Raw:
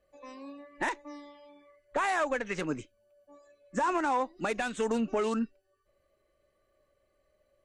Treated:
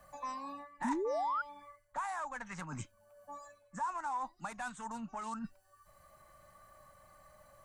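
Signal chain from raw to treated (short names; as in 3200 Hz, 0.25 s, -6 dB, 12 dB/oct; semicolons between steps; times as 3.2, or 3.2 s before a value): low shelf 140 Hz -5 dB; reverse; compressor 16:1, threshold -43 dBFS, peak gain reduction 18.5 dB; reverse; EQ curve 160 Hz 0 dB, 420 Hz -25 dB, 910 Hz +3 dB, 2700 Hz -13 dB, 8300 Hz 0 dB; painted sound rise, 0.84–1.42, 220–1500 Hz -43 dBFS; three-band squash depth 40%; gain +11 dB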